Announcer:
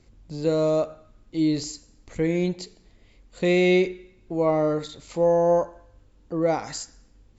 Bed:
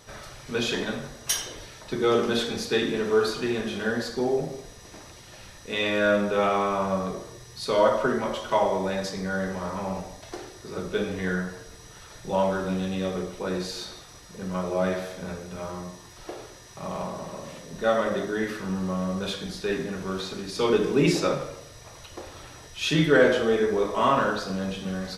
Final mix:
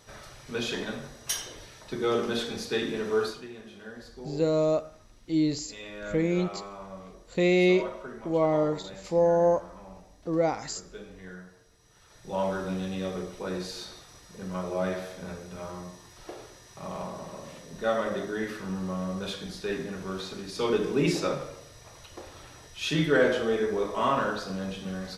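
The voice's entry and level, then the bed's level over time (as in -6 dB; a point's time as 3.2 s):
3.95 s, -2.5 dB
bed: 3.24 s -4.5 dB
3.49 s -16.5 dB
11.77 s -16.5 dB
12.47 s -4 dB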